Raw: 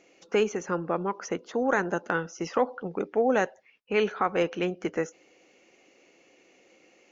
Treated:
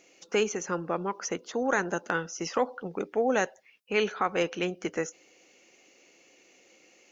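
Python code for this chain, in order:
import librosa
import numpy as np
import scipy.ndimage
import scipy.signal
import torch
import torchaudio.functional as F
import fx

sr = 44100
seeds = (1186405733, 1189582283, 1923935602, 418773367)

y = fx.high_shelf(x, sr, hz=3500.0, db=11.5)
y = y * 10.0 ** (-2.5 / 20.0)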